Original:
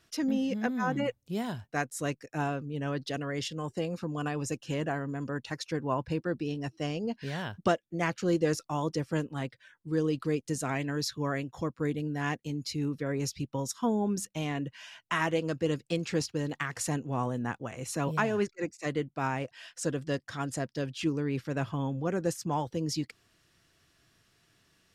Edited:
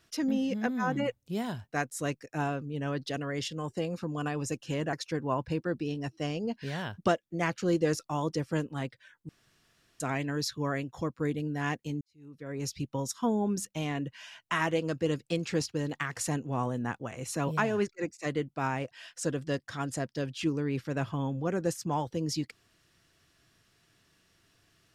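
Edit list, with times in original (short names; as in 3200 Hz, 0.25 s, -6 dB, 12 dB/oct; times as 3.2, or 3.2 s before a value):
4.93–5.53 cut
9.89–10.6 room tone
12.61–13.33 fade in quadratic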